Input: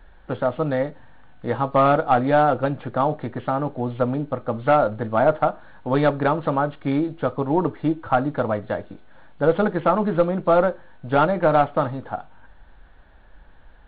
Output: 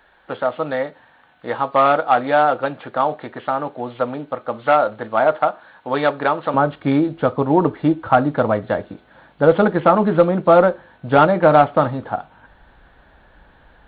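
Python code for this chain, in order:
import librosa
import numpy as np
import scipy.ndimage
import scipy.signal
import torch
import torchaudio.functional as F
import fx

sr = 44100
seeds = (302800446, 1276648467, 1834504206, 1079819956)

y = fx.highpass(x, sr, hz=fx.steps((0.0, 730.0), (6.54, 86.0)), slope=6)
y = y * librosa.db_to_amplitude(5.5)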